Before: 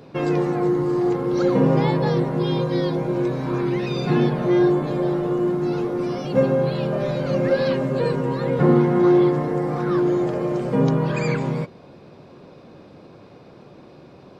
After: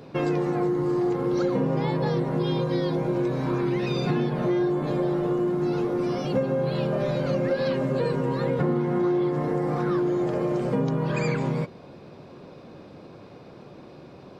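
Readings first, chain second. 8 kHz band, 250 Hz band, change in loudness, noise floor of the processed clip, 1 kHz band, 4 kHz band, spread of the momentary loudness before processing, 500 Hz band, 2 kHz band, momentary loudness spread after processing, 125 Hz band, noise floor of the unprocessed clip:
no reading, -4.5 dB, -4.5 dB, -46 dBFS, -4.0 dB, -3.5 dB, 7 LU, -4.5 dB, -4.0 dB, 2 LU, -4.0 dB, -46 dBFS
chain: compression, threshold -21 dBFS, peak gain reduction 9.5 dB

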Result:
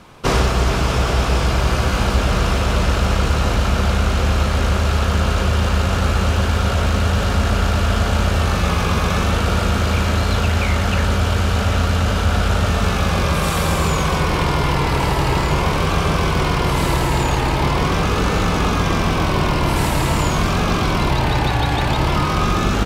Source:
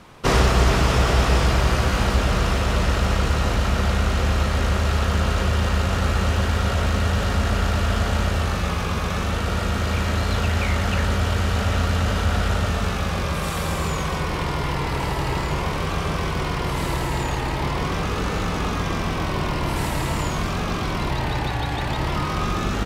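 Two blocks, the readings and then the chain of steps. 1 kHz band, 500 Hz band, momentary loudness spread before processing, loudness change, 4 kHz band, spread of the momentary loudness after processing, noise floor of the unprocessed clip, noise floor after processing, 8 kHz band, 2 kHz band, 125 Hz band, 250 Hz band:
+5.0 dB, +4.5 dB, 6 LU, +4.5 dB, +4.5 dB, 0 LU, -26 dBFS, -19 dBFS, +4.5 dB, +4.0 dB, +4.5 dB, +5.0 dB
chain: gain riding; band-stop 1.9 kHz, Q 16; trim +4.5 dB

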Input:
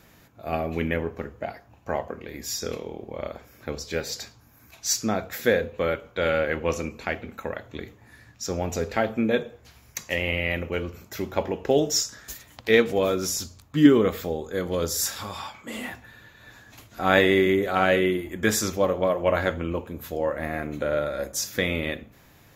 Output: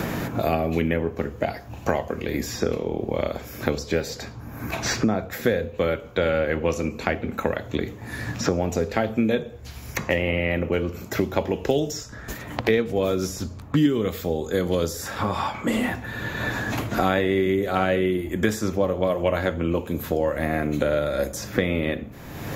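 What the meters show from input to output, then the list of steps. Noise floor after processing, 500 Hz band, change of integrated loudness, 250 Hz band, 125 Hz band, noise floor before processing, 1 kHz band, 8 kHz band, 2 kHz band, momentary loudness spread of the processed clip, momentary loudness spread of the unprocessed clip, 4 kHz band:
-40 dBFS, +1.0 dB, +0.5 dB, +2.0 dB, +5.5 dB, -55 dBFS, +1.5 dB, -5.5 dB, -0.5 dB, 8 LU, 16 LU, -2.0 dB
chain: tilt shelf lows +3.5 dB, about 700 Hz; three bands compressed up and down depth 100%; trim +1 dB

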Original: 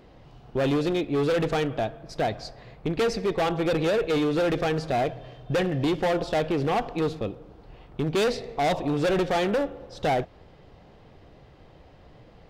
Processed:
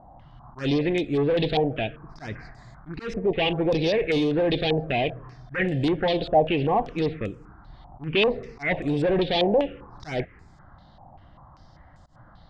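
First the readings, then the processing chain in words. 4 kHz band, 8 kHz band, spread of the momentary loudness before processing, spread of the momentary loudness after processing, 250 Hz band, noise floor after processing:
+4.5 dB, under -10 dB, 9 LU, 16 LU, +1.0 dB, -52 dBFS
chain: slow attack 138 ms; touch-sensitive phaser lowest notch 410 Hz, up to 1.4 kHz, full sweep at -21 dBFS; step-sequenced low-pass 5.1 Hz 780–7400 Hz; trim +2 dB

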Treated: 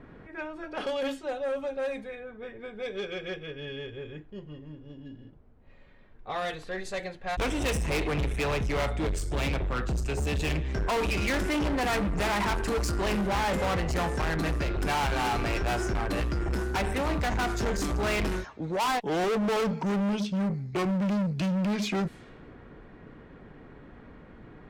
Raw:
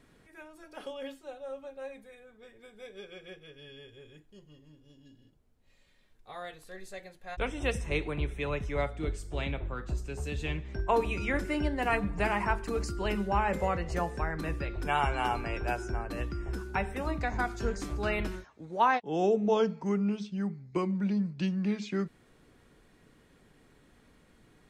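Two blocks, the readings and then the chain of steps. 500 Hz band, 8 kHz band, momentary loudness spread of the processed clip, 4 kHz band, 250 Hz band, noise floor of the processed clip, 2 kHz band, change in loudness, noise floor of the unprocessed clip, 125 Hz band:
+2.5 dB, +10.0 dB, 12 LU, +8.0 dB, +3.5 dB, -51 dBFS, +3.5 dB, +2.5 dB, -63 dBFS, +4.5 dB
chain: overload inside the chain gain 31.5 dB; level-controlled noise filter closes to 1.4 kHz, open at -36 dBFS; Chebyshev shaper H 5 -16 dB, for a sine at -30 dBFS; trim +8 dB

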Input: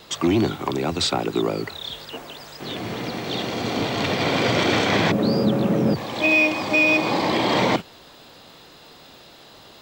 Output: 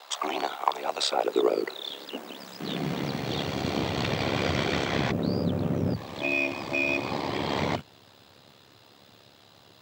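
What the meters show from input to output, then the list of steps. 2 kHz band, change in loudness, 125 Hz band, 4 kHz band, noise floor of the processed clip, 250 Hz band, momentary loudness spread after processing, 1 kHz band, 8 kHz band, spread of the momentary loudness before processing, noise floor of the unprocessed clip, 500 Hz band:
-8.5 dB, -7.5 dB, -4.5 dB, -6.5 dB, -56 dBFS, -8.0 dB, 9 LU, -5.0 dB, -6.0 dB, 14 LU, -47 dBFS, -6.0 dB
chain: ring modulator 35 Hz; high-pass sweep 760 Hz -> 98 Hz, 0.74–3.50 s; gain riding within 4 dB 2 s; trim -4.5 dB

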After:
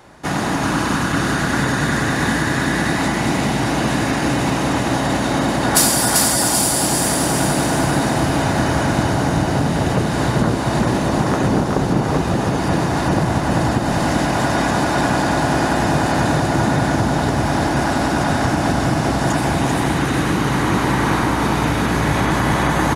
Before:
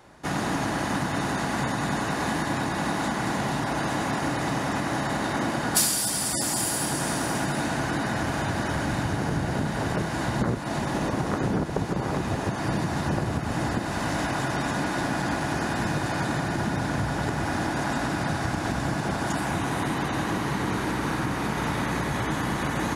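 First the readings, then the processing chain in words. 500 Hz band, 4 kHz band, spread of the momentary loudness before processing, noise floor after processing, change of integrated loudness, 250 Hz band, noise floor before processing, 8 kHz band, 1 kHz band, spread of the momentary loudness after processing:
+10.0 dB, +9.0 dB, 3 LU, -20 dBFS, +9.0 dB, +9.5 dB, -30 dBFS, +9.0 dB, +9.0 dB, 3 LU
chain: feedback delay 391 ms, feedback 46%, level -3 dB; trim +7 dB

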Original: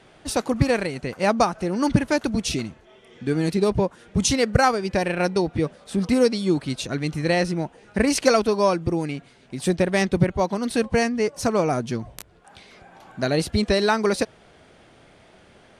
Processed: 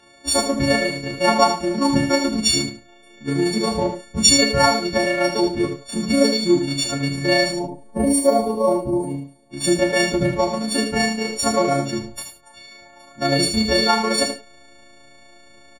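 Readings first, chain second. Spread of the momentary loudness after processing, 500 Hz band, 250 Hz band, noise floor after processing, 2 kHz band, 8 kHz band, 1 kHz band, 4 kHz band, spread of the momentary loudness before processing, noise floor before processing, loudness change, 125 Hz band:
10 LU, +1.5 dB, +2.5 dB, -49 dBFS, +4.0 dB, +8.5 dB, +3.0 dB, +10.0 dB, 9 LU, -53 dBFS, +3.5 dB, -1.5 dB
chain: partials quantised in pitch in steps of 4 st; treble shelf 11 kHz -9 dB; AM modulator 28 Hz, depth 25%; in parallel at -5 dB: hysteresis with a dead band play -21.5 dBFS; on the sum: time-frequency box 7.52–9.52 s, 1.1–8.5 kHz -18 dB; on a send: delay 79 ms -7.5 dB; on the sum: gated-style reverb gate 120 ms falling, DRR 1.5 dB; trim -4 dB

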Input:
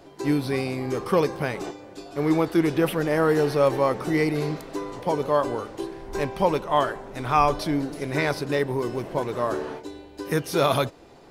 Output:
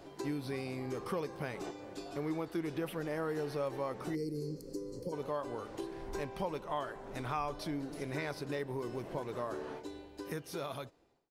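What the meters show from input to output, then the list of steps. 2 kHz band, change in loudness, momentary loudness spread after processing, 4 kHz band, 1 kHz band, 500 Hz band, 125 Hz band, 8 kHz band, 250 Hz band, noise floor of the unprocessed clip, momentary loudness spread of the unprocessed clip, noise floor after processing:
-14.5 dB, -15.0 dB, 6 LU, -14.5 dB, -15.5 dB, -14.5 dB, -13.5 dB, -12.5 dB, -14.0 dB, -48 dBFS, 12 LU, -55 dBFS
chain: fade out at the end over 1.88 s; compression 2.5:1, threshold -36 dBFS, peak gain reduction 14.5 dB; time-frequency box 4.15–5.13 s, 580–4100 Hz -21 dB; trim -3.5 dB

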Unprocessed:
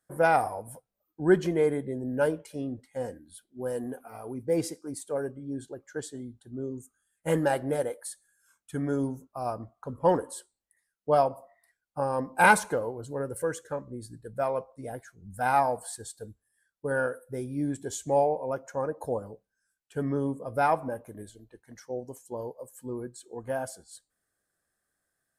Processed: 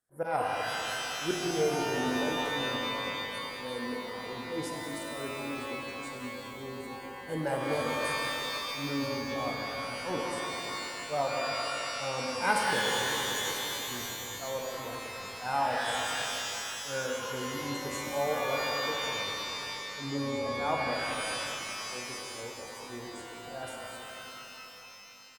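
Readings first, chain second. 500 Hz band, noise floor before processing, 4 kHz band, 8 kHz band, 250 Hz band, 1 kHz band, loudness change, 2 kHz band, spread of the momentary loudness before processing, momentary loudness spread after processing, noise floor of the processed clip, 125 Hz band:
-5.5 dB, -83 dBFS, +15.0 dB, +3.5 dB, -4.5 dB, -3.5 dB, -3.0 dB, +0.5 dB, 17 LU, 12 LU, -45 dBFS, -6.0 dB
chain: slow attack 120 ms; frequency-shifting echo 195 ms, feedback 51%, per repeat -31 Hz, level -11.5 dB; pitch-shifted reverb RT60 3.3 s, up +12 st, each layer -2 dB, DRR -0.5 dB; trim -7.5 dB

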